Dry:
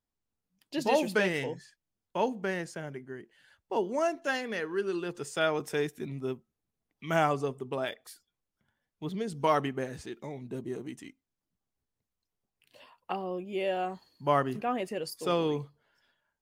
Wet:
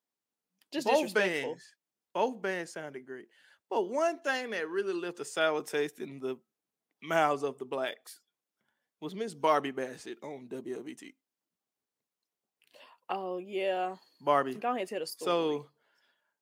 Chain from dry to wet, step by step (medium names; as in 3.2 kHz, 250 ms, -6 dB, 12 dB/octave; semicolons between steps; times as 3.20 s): high-pass 270 Hz 12 dB/octave